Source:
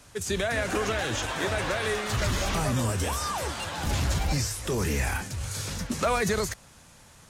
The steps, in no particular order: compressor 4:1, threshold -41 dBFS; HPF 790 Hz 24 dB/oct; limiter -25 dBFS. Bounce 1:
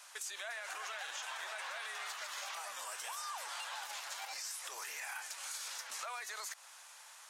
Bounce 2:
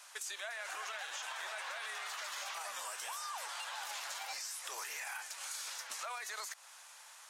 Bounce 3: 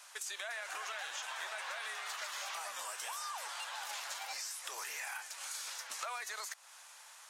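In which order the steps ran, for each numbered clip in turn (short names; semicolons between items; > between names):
limiter > HPF > compressor; HPF > limiter > compressor; HPF > compressor > limiter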